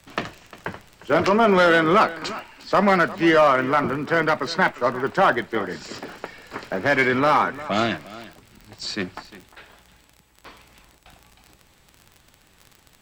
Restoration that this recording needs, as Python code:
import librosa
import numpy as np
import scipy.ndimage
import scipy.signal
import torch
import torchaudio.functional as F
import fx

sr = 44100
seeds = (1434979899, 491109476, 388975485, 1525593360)

y = fx.fix_declip(x, sr, threshold_db=-9.5)
y = fx.fix_declick_ar(y, sr, threshold=6.5)
y = fx.fix_echo_inverse(y, sr, delay_ms=353, level_db=-17.5)